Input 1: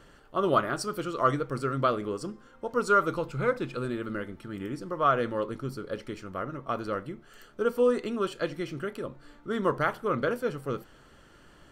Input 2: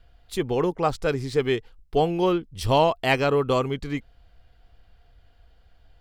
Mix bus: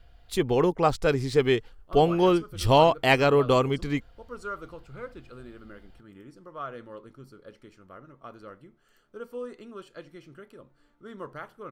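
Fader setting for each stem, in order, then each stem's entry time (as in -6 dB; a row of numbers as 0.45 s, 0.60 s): -13.0 dB, +1.0 dB; 1.55 s, 0.00 s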